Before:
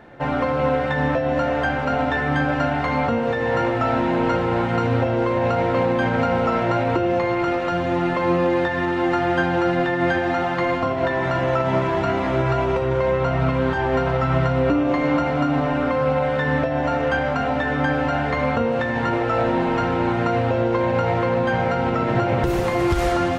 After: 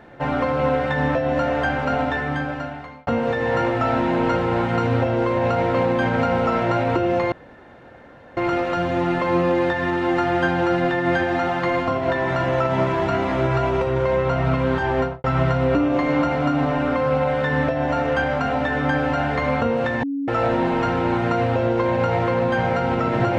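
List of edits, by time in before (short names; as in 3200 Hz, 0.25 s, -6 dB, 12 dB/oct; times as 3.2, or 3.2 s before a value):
1.94–3.07 fade out
7.32 insert room tone 1.05 s
13.92–14.19 studio fade out
18.98–19.23 bleep 279 Hz -22 dBFS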